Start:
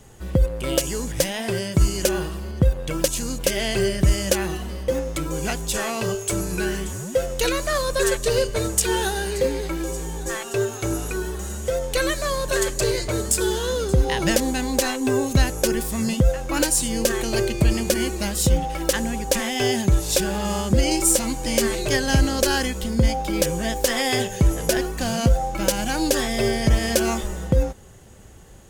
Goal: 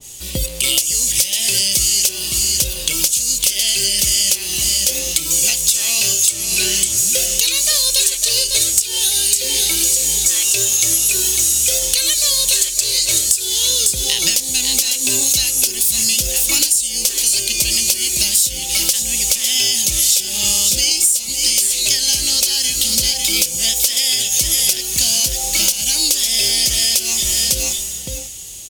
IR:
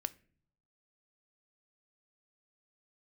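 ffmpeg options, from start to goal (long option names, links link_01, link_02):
-filter_complex "[0:a]asettb=1/sr,asplit=3[link_01][link_02][link_03];[link_01]atrim=end=6.294[link_04];[link_02]atrim=start=6.29:end=6.98,asetpts=PTS-STARTPTS,afade=type=in:duration=0.004:curve=qsin,afade=type=out:start_time=0.686:duration=0.004:curve=qsin,highshelf=frequency=7900:gain=-10[link_05];[link_03]atrim=start=6.976[link_06];[link_04][link_05]acrossfade=duration=0.004:curve1=hsin:curve2=qsin[link_07];[link_07][link_06]acrossfade=duration=0.004:curve1=qsin:curve2=hsin,aecho=1:1:551:0.335,aexciter=amount=14.9:drive=2.8:freq=2400,acompressor=threshold=-13dB:ratio=20,asoftclip=type=tanh:threshold=-5dB[link_08];[1:a]atrim=start_sample=2205,atrim=end_sample=3528[link_09];[link_08][link_09]afir=irnorm=-1:irlink=0,adynamicequalizer=threshold=0.0178:dfrequency=1800:dqfactor=0.7:tfrequency=1800:tqfactor=0.7:attack=5:release=100:ratio=0.375:range=2.5:mode=boostabove:tftype=highshelf,volume=-1.5dB"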